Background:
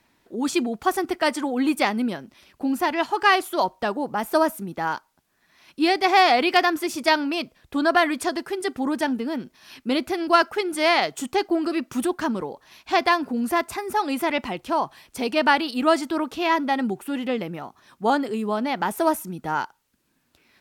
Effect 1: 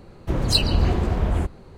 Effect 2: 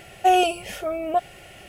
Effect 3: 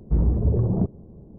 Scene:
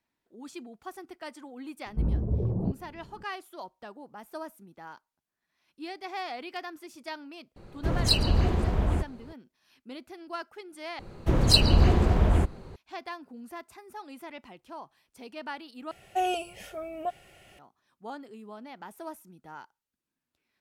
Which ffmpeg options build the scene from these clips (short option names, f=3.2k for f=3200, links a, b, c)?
-filter_complex "[1:a]asplit=2[a][b];[0:a]volume=-19.5dB,asplit=3[c][d][e];[c]atrim=end=10.994[f];[b]atrim=end=1.77[g];[d]atrim=start=12.756:end=15.914[h];[2:a]atrim=end=1.68,asetpts=PTS-STARTPTS,volume=-10.5dB[i];[e]atrim=start=17.586[j];[3:a]atrim=end=1.38,asetpts=PTS-STARTPTS,volume=-7dB,afade=t=in:d=0.004:c=hsin,afade=t=out:st=1.376:d=0.004:c=hsin,adelay=1860[k];[a]atrim=end=1.77,asetpts=PTS-STARTPTS,volume=-4dB,afade=t=in:d=0.004:c=hsin,afade=t=out:st=1.766:d=0.004:c=hsin,adelay=7560[l];[f][g]acrossfade=d=0.004:c1=hsin:c2=hsin[m];[m][h]acrossfade=d=0.004:c1=hsin:c2=hsin[n];[n][i]acrossfade=d=0.004:c1=hsin:c2=hsin[o];[o][j]acrossfade=d=0.004:c1=hsin:c2=hsin[p];[p][k][l]amix=inputs=3:normalize=0"